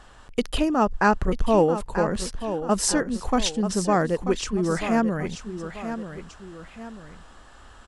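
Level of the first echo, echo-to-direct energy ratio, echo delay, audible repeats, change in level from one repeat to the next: −10.0 dB, −9.5 dB, 937 ms, 2, −7.5 dB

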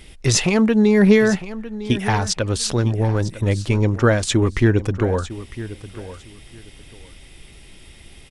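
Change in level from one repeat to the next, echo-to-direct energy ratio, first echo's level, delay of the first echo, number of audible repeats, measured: −13.0 dB, −15.0 dB, −15.0 dB, 954 ms, 2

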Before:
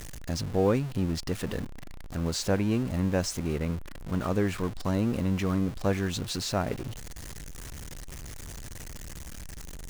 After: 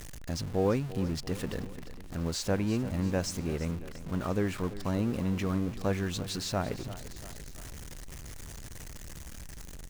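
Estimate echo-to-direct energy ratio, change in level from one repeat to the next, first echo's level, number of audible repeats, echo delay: −13.5 dB, −5.0 dB, −15.0 dB, 3, 342 ms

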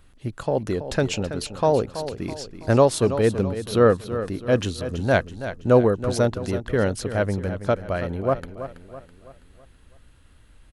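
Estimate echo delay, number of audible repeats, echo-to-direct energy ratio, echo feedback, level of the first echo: 328 ms, 4, −10.5 dB, 45%, −11.5 dB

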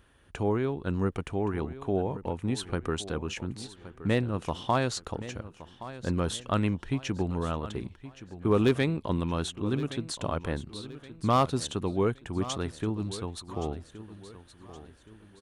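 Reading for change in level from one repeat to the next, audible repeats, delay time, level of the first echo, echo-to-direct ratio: −8.0 dB, 3, 1,120 ms, −15.0 dB, −14.5 dB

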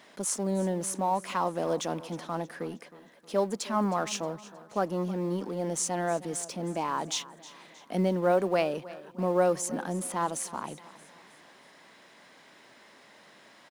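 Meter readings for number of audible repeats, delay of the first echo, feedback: 3, 314 ms, 46%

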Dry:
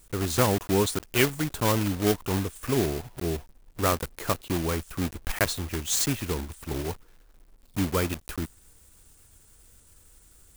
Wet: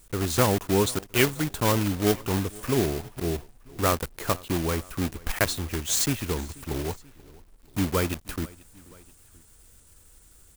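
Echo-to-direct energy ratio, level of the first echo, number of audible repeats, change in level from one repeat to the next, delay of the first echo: −21.5 dB, −23.0 dB, 2, −4.5 dB, 484 ms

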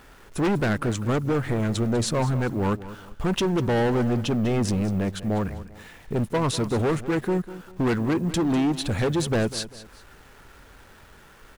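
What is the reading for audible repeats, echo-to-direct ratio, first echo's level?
2, −14.5 dB, −15.0 dB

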